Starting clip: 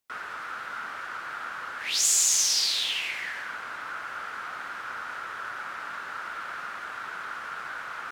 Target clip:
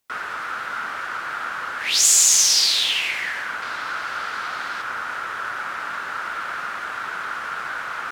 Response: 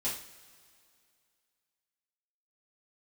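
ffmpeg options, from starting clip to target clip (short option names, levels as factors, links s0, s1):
-filter_complex "[0:a]asettb=1/sr,asplit=3[s0][s1][s2];[s0]atrim=end=3.624[s3];[s1]atrim=start=3.62:end=4.82,asetpts=PTS-STARTPTS,afade=t=in:d=0.004:c=qsin,afade=t=out:st=1.196:d=0.004:c=qsin,equalizer=f=4400:t=o:w=1:g=7[s4];[s2]atrim=start=4.816[s5];[s3][s4]acrossfade=d=0.004:c1=hsin:c2=qsin[s6];[s6][s5]acrossfade=d=0.004:c1=qsin:c2=hsin,volume=2.37"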